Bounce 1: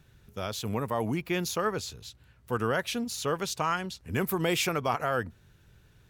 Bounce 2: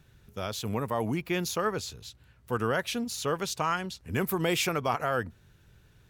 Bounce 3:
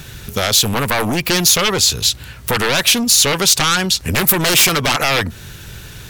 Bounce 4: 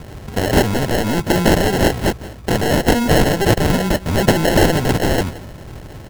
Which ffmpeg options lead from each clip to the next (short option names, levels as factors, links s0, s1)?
-af anull
-af "aeval=exprs='0.178*sin(PI/2*3.98*val(0)/0.178)':c=same,acompressor=threshold=0.0562:ratio=5,highshelf=f=2100:g=10,volume=2.37"
-af "acrusher=samples=37:mix=1:aa=0.000001,aecho=1:1:173:0.141"